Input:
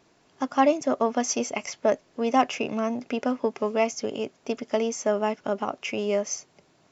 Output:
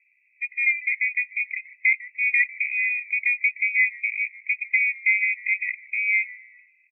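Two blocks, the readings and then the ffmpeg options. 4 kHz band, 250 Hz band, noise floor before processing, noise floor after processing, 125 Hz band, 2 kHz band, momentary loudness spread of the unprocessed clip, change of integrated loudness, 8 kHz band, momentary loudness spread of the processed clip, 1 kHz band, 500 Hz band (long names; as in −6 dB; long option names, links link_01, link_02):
below −40 dB, below −40 dB, −63 dBFS, −64 dBFS, below −40 dB, +17.5 dB, 9 LU, +4.5 dB, can't be measured, 7 LU, below −40 dB, below −40 dB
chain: -filter_complex "[0:a]lowpass=frequency=2300:width_type=q:width=0.5098,lowpass=frequency=2300:width_type=q:width=0.6013,lowpass=frequency=2300:width_type=q:width=0.9,lowpass=frequency=2300:width_type=q:width=2.563,afreqshift=-2700,dynaudnorm=framelen=570:gausssize=5:maxgain=5dB,asplit=5[link_01][link_02][link_03][link_04][link_05];[link_02]adelay=150,afreqshift=-110,volume=-20dB[link_06];[link_03]adelay=300,afreqshift=-220,volume=-25dB[link_07];[link_04]adelay=450,afreqshift=-330,volume=-30.1dB[link_08];[link_05]adelay=600,afreqshift=-440,volume=-35.1dB[link_09];[link_01][link_06][link_07][link_08][link_09]amix=inputs=5:normalize=0,afftfilt=real='re*eq(mod(floor(b*sr/1024/1900),2),1)':imag='im*eq(mod(floor(b*sr/1024/1900),2),1)':win_size=1024:overlap=0.75,volume=-1dB"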